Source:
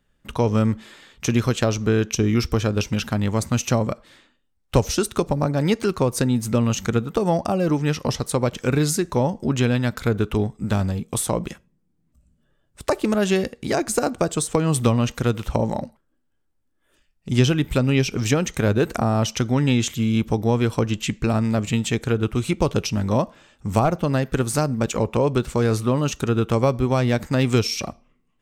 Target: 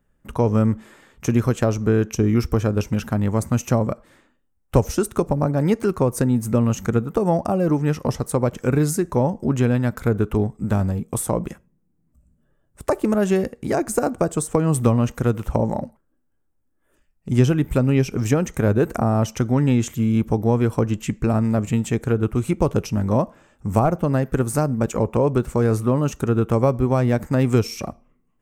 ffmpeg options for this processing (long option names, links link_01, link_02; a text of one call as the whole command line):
ffmpeg -i in.wav -af "equalizer=frequency=3800:width_type=o:width=1.5:gain=-13.5,volume=1.5dB" out.wav